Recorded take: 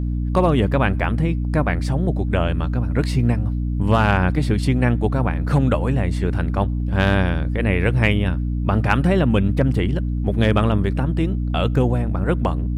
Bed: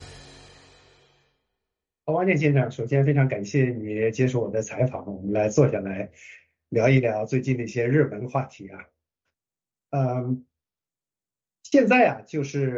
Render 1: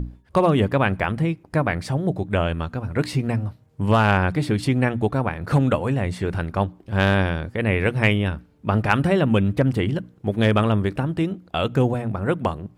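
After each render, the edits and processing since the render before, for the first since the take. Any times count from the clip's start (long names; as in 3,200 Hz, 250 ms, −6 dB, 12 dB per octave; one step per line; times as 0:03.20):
mains-hum notches 60/120/180/240/300 Hz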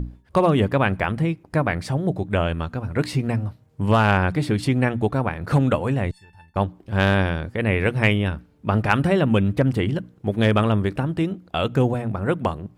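0:06.11–0:06.56: tuned comb filter 880 Hz, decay 0.18 s, mix 100%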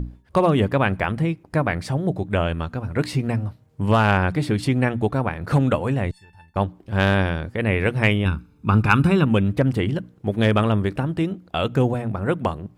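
0:08.25–0:09.25: comb filter 0.8 ms, depth 70%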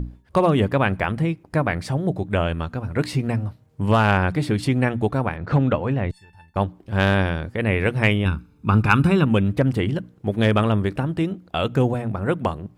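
0:05.36–0:06.10: high-frequency loss of the air 150 metres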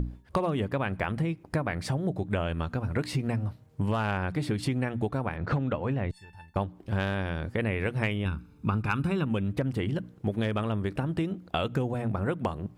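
downward compressor 6 to 1, threshold −25 dBFS, peak gain reduction 13.5 dB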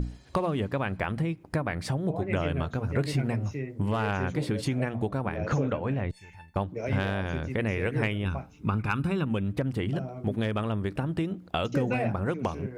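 mix in bed −13.5 dB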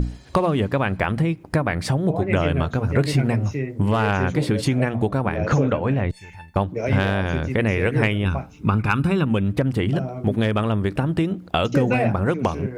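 level +8 dB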